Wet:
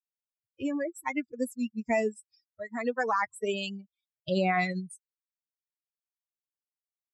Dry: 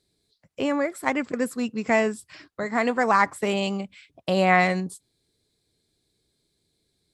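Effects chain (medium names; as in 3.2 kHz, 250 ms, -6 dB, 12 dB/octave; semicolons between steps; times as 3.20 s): expander on every frequency bin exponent 3; peak limiter -18 dBFS, peak gain reduction 8.5 dB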